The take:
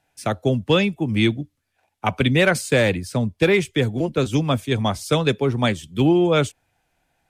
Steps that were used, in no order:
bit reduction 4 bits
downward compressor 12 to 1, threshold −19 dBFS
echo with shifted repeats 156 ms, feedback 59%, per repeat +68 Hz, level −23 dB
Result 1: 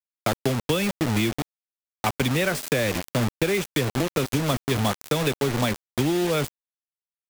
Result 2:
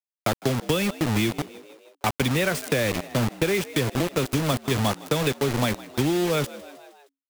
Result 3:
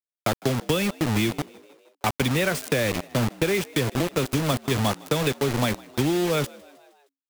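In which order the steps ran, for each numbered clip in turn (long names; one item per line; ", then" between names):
echo with shifted repeats, then bit reduction, then downward compressor
bit reduction, then echo with shifted repeats, then downward compressor
bit reduction, then downward compressor, then echo with shifted repeats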